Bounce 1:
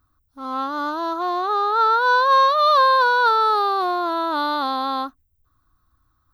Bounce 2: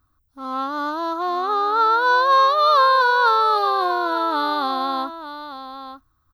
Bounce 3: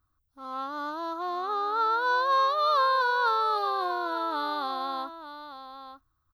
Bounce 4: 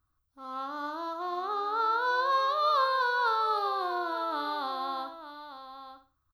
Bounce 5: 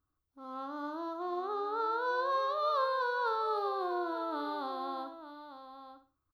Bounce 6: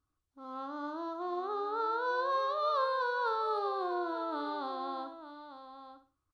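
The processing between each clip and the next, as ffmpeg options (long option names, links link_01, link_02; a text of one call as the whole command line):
ffmpeg -i in.wav -af "aecho=1:1:897:0.266" out.wav
ffmpeg -i in.wav -af "equalizer=frequency=250:width=5:gain=-6.5,volume=-8.5dB" out.wav
ffmpeg -i in.wav -af "aecho=1:1:62|124|186:0.316|0.0917|0.0266,volume=-2.5dB" out.wav
ffmpeg -i in.wav -af "equalizer=frequency=340:width=0.56:gain=11,volume=-9dB" out.wav
ffmpeg -i in.wav -af "aresample=22050,aresample=44100" out.wav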